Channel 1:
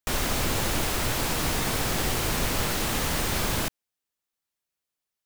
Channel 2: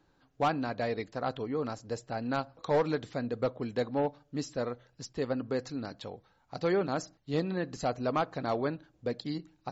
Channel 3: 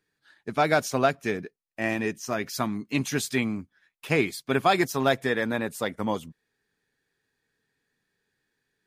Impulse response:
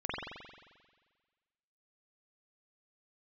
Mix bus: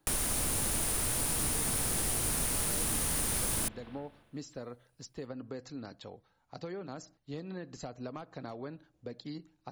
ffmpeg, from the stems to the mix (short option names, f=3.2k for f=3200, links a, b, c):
-filter_complex "[0:a]volume=0dB,asplit=2[a][b];[b]volume=-22dB[c];[1:a]acompressor=threshold=-31dB:ratio=6,volume=-5dB[d];[3:a]atrim=start_sample=2205[e];[c][e]afir=irnorm=-1:irlink=0[f];[a][d][f]amix=inputs=3:normalize=0,equalizer=f=9.6k:t=o:w=0.22:g=14,acrossover=split=320|5900[g][h][i];[g]acompressor=threshold=-36dB:ratio=4[j];[h]acompressor=threshold=-41dB:ratio=4[k];[i]acompressor=threshold=-31dB:ratio=4[l];[j][k][l]amix=inputs=3:normalize=0"